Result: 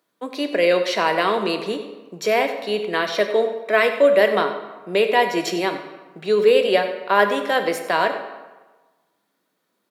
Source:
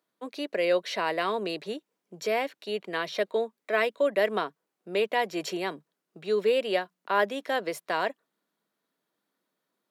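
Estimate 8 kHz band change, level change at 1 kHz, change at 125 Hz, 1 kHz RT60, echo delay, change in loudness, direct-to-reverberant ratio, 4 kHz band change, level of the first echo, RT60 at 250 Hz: +8.5 dB, +9.0 dB, +9.0 dB, 1.3 s, 95 ms, +9.0 dB, 6.0 dB, +9.0 dB, -14.5 dB, 1.1 s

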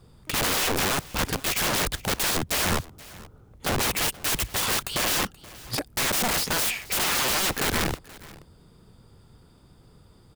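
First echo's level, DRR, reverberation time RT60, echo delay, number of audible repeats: -20.5 dB, none, none, 0.478 s, 1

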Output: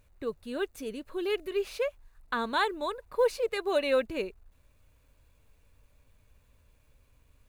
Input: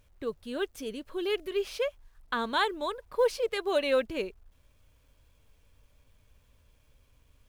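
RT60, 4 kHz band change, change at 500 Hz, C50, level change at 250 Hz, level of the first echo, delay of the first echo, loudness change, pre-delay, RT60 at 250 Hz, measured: none, -2.5 dB, 0.0 dB, none, 0.0 dB, none, none, 0.0 dB, none, none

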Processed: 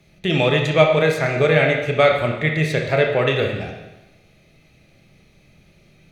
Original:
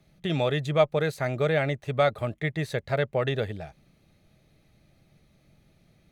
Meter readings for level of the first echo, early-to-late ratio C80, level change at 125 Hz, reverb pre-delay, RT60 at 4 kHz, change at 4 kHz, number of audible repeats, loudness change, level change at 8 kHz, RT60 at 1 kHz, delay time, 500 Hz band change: none, 7.0 dB, +7.0 dB, 25 ms, 1.0 s, +10.5 dB, none, +9.0 dB, n/a, 1.0 s, none, +8.5 dB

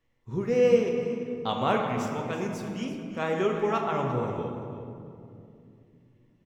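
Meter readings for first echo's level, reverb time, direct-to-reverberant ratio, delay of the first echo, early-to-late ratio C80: -12.5 dB, 2.6 s, 0.5 dB, 0.343 s, 4.0 dB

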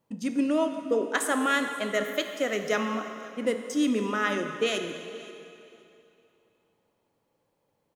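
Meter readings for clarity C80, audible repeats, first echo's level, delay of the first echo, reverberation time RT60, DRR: 7.0 dB, 2, -21.0 dB, 0.523 s, 2.8 s, 5.5 dB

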